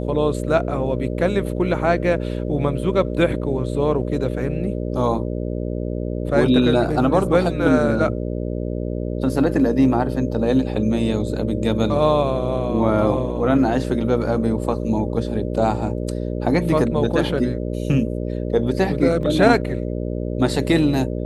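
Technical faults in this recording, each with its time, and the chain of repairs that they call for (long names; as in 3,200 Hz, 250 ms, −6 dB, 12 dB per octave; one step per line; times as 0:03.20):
mains buzz 60 Hz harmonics 10 −25 dBFS
0:19.23: drop-out 2.1 ms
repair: hum removal 60 Hz, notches 10
repair the gap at 0:19.23, 2.1 ms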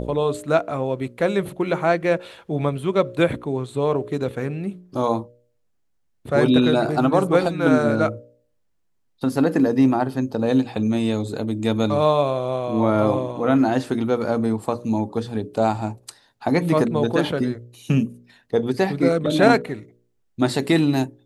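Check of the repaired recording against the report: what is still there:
none of them is left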